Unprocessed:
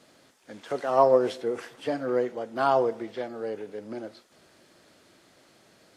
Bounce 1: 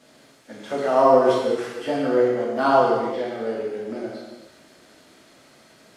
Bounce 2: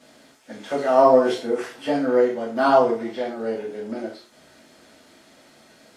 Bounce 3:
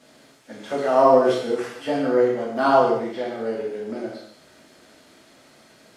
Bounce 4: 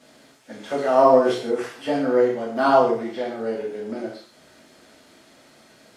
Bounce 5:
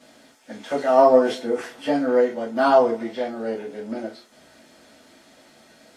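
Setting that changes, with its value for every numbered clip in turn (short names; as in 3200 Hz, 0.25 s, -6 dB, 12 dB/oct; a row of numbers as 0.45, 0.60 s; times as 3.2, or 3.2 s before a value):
non-linear reverb, gate: 440, 130, 280, 190, 80 ms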